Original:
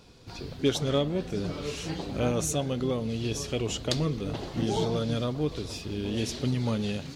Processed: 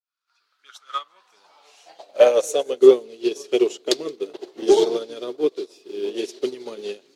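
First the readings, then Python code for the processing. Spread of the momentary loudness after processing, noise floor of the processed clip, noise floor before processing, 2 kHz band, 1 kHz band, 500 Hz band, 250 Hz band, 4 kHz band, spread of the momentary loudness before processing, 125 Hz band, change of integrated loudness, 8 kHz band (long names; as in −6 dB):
18 LU, −72 dBFS, −43 dBFS, +2.5 dB, +5.5 dB, +12.0 dB, +2.0 dB, +2.0 dB, 7 LU, below −20 dB, +9.0 dB, +0.5 dB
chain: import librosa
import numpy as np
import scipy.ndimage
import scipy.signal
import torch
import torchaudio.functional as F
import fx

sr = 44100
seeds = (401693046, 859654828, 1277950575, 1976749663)

p1 = fx.fade_in_head(x, sr, length_s=1.29)
p2 = fx.highpass(p1, sr, hz=230.0, slope=6)
p3 = fx.high_shelf(p2, sr, hz=2000.0, db=6.0)
p4 = fx.filter_sweep_highpass(p3, sr, from_hz=1300.0, to_hz=380.0, start_s=0.83, end_s=2.91, q=7.8)
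p5 = np.clip(p4, -10.0 ** (-14.5 / 20.0), 10.0 ** (-14.5 / 20.0))
p6 = p4 + (p5 * librosa.db_to_amplitude(-7.5))
p7 = fx.echo_feedback(p6, sr, ms=173, feedback_pct=54, wet_db=-20.5)
p8 = fx.upward_expand(p7, sr, threshold_db=-30.0, expansion=2.5)
y = p8 * librosa.db_to_amplitude(6.0)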